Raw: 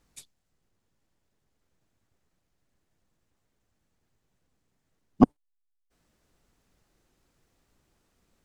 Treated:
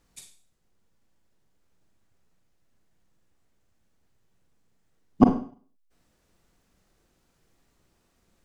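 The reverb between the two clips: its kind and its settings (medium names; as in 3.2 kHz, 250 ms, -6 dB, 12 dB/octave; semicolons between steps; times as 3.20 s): Schroeder reverb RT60 0.45 s, combs from 33 ms, DRR 4.5 dB; trim +1 dB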